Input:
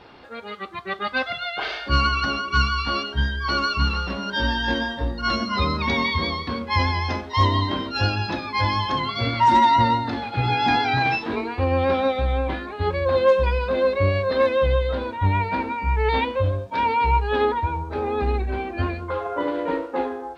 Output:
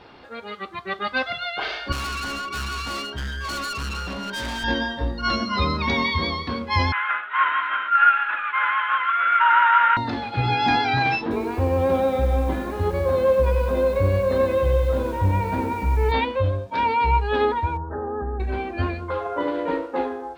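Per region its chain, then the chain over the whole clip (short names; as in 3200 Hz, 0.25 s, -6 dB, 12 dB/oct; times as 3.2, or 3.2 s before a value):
1.92–4.64 HPF 57 Hz 24 dB/oct + overloaded stage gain 27 dB
6.92–9.97 CVSD 16 kbps + resonant high-pass 1400 Hz, resonance Q 10
11.21–16.12 tilt shelf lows +6 dB, about 1200 Hz + compressor 1.5:1, threshold -25 dBFS + lo-fi delay 97 ms, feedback 80%, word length 7-bit, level -10 dB
17.77–18.4 compressor 3:1, threshold -25 dBFS + brick-wall FIR low-pass 1900 Hz
whole clip: dry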